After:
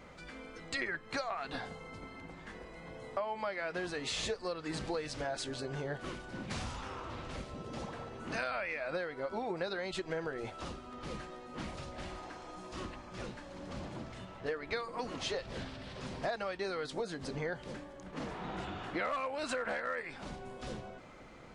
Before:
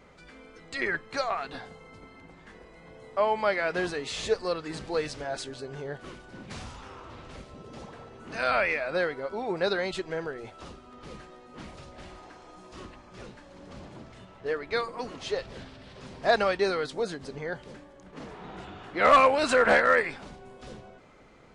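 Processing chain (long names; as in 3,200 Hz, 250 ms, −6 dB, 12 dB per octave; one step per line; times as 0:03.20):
notch filter 420 Hz, Q 12
downward compressor 16 to 1, threshold −35 dBFS, peak gain reduction 21 dB
level +2 dB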